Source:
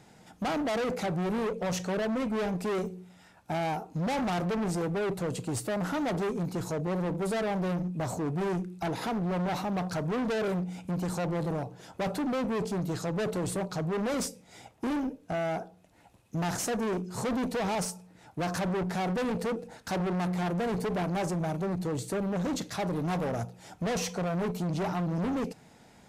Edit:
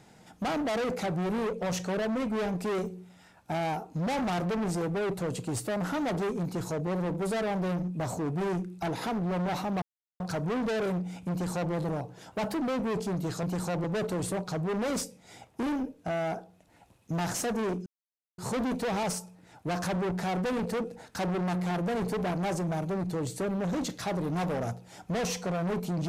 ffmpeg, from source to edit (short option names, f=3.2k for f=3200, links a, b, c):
-filter_complex "[0:a]asplit=7[a][b][c][d][e][f][g];[a]atrim=end=9.82,asetpts=PTS-STARTPTS,afade=t=out:st=9.816:d=0.004:c=hsin,apad=pad_dur=0.38[h];[b]atrim=start=9.82:end=11.944,asetpts=PTS-STARTPTS,afade=t=in:d=0.004:c=hsin[i];[c]atrim=start=11.94:end=12.26,asetpts=PTS-STARTPTS,asetrate=48510,aresample=44100,atrim=end_sample=12829,asetpts=PTS-STARTPTS[j];[d]atrim=start=12.256:end=13.082[k];[e]atrim=start=10.928:end=11.342[l];[f]atrim=start=13.078:end=17.1,asetpts=PTS-STARTPTS,afade=t=out:st=4.018:d=0.004:c=hsin,apad=pad_dur=0.52[m];[g]atrim=start=17.1,asetpts=PTS-STARTPTS,afade=t=in:d=0.004:c=hsin[n];[h][i]concat=n=2:v=0:a=1[o];[o][j]acrossfade=d=0.004:c1=hsin:c2=hsin[p];[p][k]acrossfade=d=0.004:c1=hsin:c2=hsin[q];[q][l]acrossfade=d=0.004:c1=hsin:c2=hsin[r];[m][n]concat=n=2:v=0:a=1[s];[r][s]acrossfade=d=0.004:c1=hsin:c2=hsin"